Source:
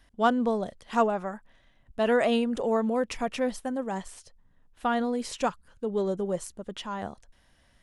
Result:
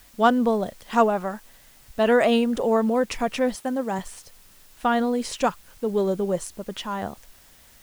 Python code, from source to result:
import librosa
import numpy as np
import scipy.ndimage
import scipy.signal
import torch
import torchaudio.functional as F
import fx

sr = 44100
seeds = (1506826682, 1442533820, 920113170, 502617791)

p1 = fx.highpass(x, sr, hz=110.0, slope=12, at=(3.55, 3.99))
p2 = fx.quant_dither(p1, sr, seeds[0], bits=8, dither='triangular')
p3 = p1 + (p2 * librosa.db_to_amplitude(-8.0))
y = p3 * librosa.db_to_amplitude(2.0)